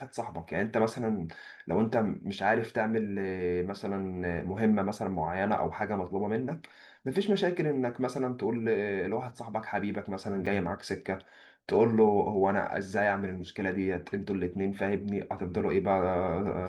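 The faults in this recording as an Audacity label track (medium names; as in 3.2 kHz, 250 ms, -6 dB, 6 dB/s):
10.460000	10.470000	dropout 5.9 ms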